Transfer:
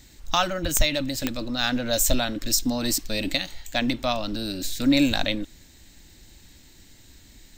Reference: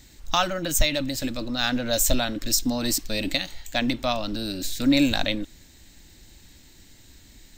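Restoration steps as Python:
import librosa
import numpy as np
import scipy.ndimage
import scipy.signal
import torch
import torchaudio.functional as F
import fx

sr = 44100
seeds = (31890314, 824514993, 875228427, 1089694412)

y = fx.fix_declick_ar(x, sr, threshold=10.0)
y = fx.highpass(y, sr, hz=140.0, slope=24, at=(0.62, 0.74), fade=0.02)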